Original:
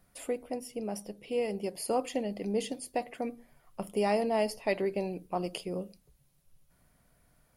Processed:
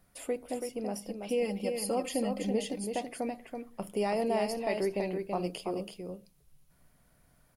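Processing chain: 1.07–2.51 comb 3.8 ms, depth 73%; limiter -22 dBFS, peak gain reduction 7 dB; on a send: echo 0.33 s -5.5 dB

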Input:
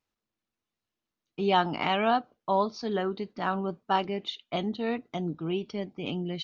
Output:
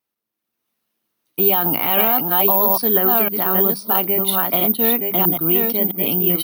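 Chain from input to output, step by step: reverse delay 0.657 s, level -4 dB; HPF 130 Hz; notches 50/100/150/200 Hz; limiter -21 dBFS, peak gain reduction 11.5 dB; AGC gain up to 9.5 dB; added harmonics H 6 -43 dB, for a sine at -11.5 dBFS; careless resampling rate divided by 3×, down filtered, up zero stuff

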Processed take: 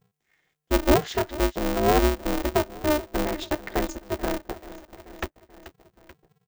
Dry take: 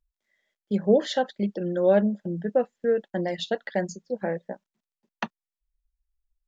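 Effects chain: ten-band EQ 125 Hz +9 dB, 1000 Hz -8 dB, 4000 Hz -6 dB; feedback echo 0.434 s, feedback 53%, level -18.5 dB; in parallel at +2 dB: compressor, threshold -47 dBFS, peak gain reduction 29.5 dB; on the sum: polarity switched at an audio rate 150 Hz

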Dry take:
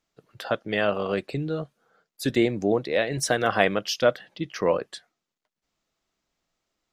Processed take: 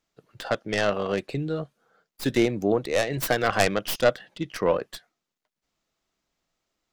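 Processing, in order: tracing distortion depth 0.25 ms

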